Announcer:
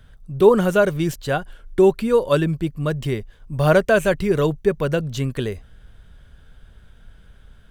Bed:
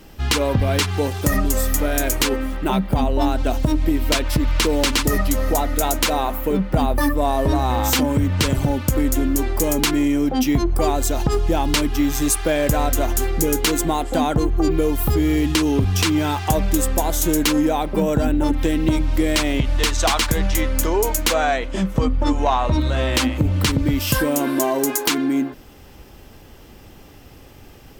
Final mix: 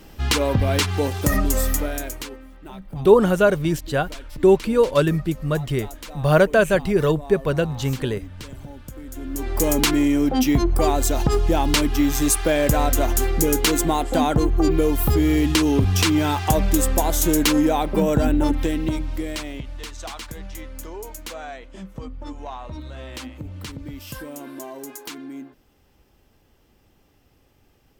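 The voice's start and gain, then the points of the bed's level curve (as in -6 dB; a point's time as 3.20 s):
2.65 s, 0.0 dB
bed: 1.70 s -1 dB
2.42 s -19 dB
9.05 s -19 dB
9.63 s 0 dB
18.40 s 0 dB
19.84 s -16 dB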